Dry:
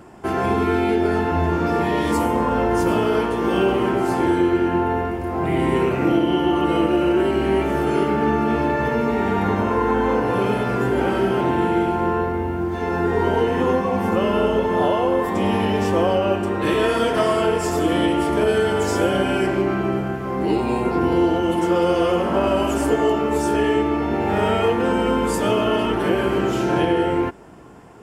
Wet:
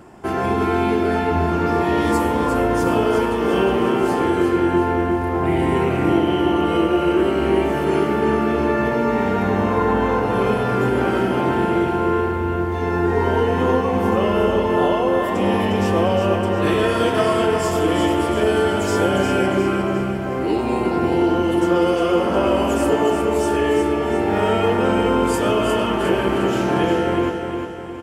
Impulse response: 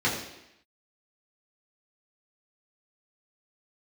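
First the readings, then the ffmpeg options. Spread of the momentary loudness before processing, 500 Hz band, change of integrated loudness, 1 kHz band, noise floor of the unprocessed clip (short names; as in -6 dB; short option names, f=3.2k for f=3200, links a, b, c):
3 LU, +1.0 dB, +1.0 dB, +1.0 dB, -25 dBFS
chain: -af "aecho=1:1:356|712|1068|1424|1780|2136:0.501|0.236|0.111|0.052|0.0245|0.0115"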